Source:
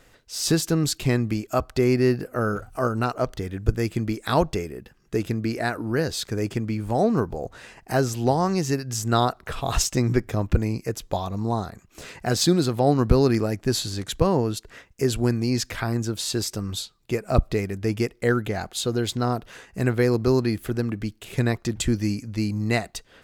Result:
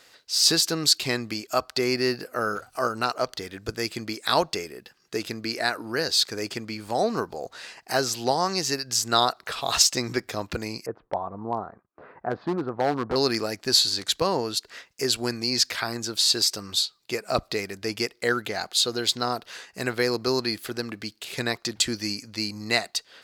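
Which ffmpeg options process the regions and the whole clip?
ffmpeg -i in.wav -filter_complex "[0:a]asettb=1/sr,asplit=3[link_01][link_02][link_03];[link_01]atrim=end=10.864[link_04];[link_02]atrim=start=10.86:end=13.16,asetpts=PTS-STARTPTS,afade=type=in:duration=0.004:curve=qsin,afade=type=out:start_time=2.296:duration=0.004:curve=qsin,lowpass=frequency=1300:width=0.5412,lowpass=frequency=1300:width=1.3066,agate=range=-33dB:threshold=-48dB:ratio=3:release=100:detection=peak,asoftclip=type=hard:threshold=-14.5dB[link_05];[link_03]atrim=start=13.156[link_06];[link_04][link_05]acrossfade=duration=0.004:curve1=hsin:curve2=qsin[link_07];[link_07][link_06]acrossfade=duration=0.004:curve1=qsin:curve2=hsin,highpass=frequency=760:poles=1,equalizer=frequency=4500:width=2.1:gain=9,volume=2.5dB" out.wav

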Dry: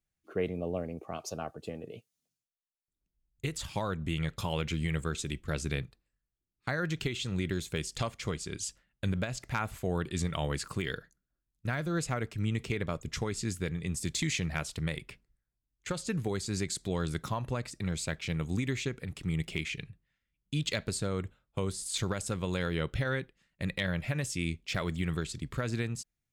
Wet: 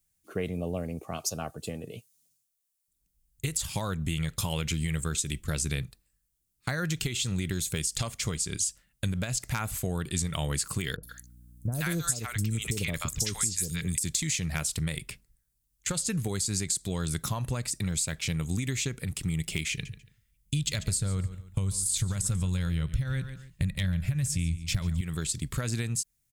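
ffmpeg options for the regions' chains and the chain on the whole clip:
ffmpeg -i in.wav -filter_complex "[0:a]asettb=1/sr,asplit=3[link_01][link_02][link_03];[link_01]atrim=end=10.964[link_04];[link_02]atrim=start=10.96:end=13.98,asetpts=PTS-STARTPTS,afade=type=in:duration=0.004:curve=qsin,afade=type=out:start_time=3.016:duration=0.004:curve=qsin,highshelf=frequency=3600:gain=10,acrossover=split=750|5300[link_05][link_06][link_07];[link_07]adelay=70[link_08];[link_06]adelay=130[link_09];[link_05][link_09][link_08]amix=inputs=3:normalize=0,atrim=end_sample=133182,aeval=exprs='val(0)+0.00126*(sin(2*PI*60*n/s)+sin(2*PI*2*60*n/s)/2+sin(2*PI*3*60*n/s)/3+sin(2*PI*4*60*n/s)/4+sin(2*PI*5*60*n/s)/5)':channel_layout=same[link_10];[link_03]atrim=start=13.976[link_11];[link_04][link_10]acrossfade=duration=0.004:curve1=hsin:curve2=qsin[link_12];[link_12][link_11]acrossfade=duration=0.004:curve1=qsin:curve2=hsin,asettb=1/sr,asplit=3[link_13][link_14][link_15];[link_13]atrim=end=19.714[link_16];[link_14]atrim=start=19.71:end=25.01,asetpts=PTS-STARTPTS,afade=type=in:duration=0.004:curve=qsin,afade=type=out:start_time=5.296:duration=0.004:curve=qsin,bandreject=frequency=212.1:width_type=h:width=4,bandreject=frequency=424.2:width_type=h:width=4,bandreject=frequency=636.3:width_type=h:width=4,bandreject=frequency=848.4:width_type=h:width=4,bandreject=frequency=1060.5:width_type=h:width=4,bandreject=frequency=1272.6:width_type=h:width=4,bandreject=frequency=1484.7:width_type=h:width=4,bandreject=frequency=1696.8:width_type=h:width=4,bandreject=frequency=1908.9:width_type=h:width=4,asubboost=boost=7:cutoff=160,aecho=1:1:141|282:0.158|0.038,atrim=end_sample=233730[link_17];[link_15]atrim=start=25.006[link_18];[link_16][link_17]acrossfade=duration=0.004:curve1=hsin:curve2=qsin[link_19];[link_19][link_18]acrossfade=duration=0.004:curve1=qsin:curve2=hsin,firequalizer=gain_entry='entry(130,0);entry(340,-6);entry(8600,11)':delay=0.05:min_phase=1,acompressor=threshold=-33dB:ratio=6,volume=7dB" out.wav

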